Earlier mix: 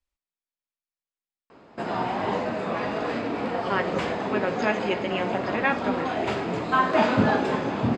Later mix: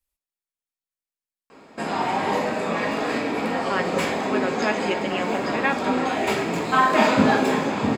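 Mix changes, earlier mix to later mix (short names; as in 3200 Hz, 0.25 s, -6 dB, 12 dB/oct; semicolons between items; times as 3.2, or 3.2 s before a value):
background: send on; master: remove air absorption 94 m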